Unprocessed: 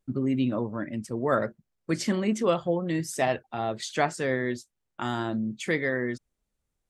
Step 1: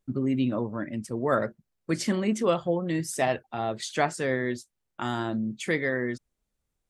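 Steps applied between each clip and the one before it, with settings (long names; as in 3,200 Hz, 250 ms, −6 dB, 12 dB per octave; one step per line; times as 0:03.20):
dynamic equaliser 9,800 Hz, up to +5 dB, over −59 dBFS, Q 3.2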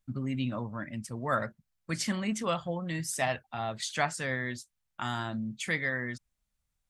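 parametric band 380 Hz −13.5 dB 1.3 octaves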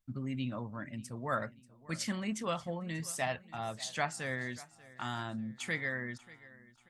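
repeating echo 587 ms, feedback 44%, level −20 dB
level −4.5 dB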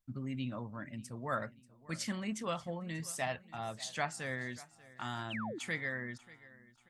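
sound drawn into the spectrogram fall, 0:05.30–0:05.59, 270–3,400 Hz −40 dBFS
level −2 dB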